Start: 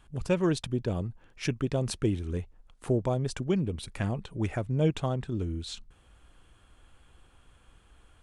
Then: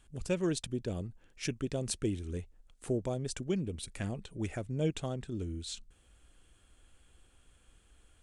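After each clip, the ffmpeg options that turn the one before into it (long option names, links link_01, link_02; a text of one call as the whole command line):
ffmpeg -i in.wav -af "equalizer=frequency=125:width_type=o:width=1:gain=-4,equalizer=frequency=1000:width_type=o:width=1:gain=-7,equalizer=frequency=8000:width_type=o:width=1:gain=7,volume=-4dB" out.wav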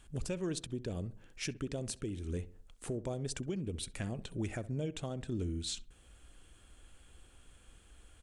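ffmpeg -i in.wav -filter_complex "[0:a]acompressor=threshold=-36dB:ratio=2.5,alimiter=level_in=7.5dB:limit=-24dB:level=0:latency=1:release=384,volume=-7.5dB,asplit=2[link_01][link_02];[link_02]adelay=66,lowpass=frequency=1500:poles=1,volume=-16dB,asplit=2[link_03][link_04];[link_04]adelay=66,lowpass=frequency=1500:poles=1,volume=0.43,asplit=2[link_05][link_06];[link_06]adelay=66,lowpass=frequency=1500:poles=1,volume=0.43,asplit=2[link_07][link_08];[link_08]adelay=66,lowpass=frequency=1500:poles=1,volume=0.43[link_09];[link_01][link_03][link_05][link_07][link_09]amix=inputs=5:normalize=0,volume=4dB" out.wav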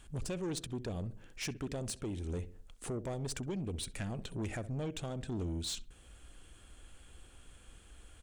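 ffmpeg -i in.wav -af "asoftclip=type=tanh:threshold=-35.5dB,volume=3dB" out.wav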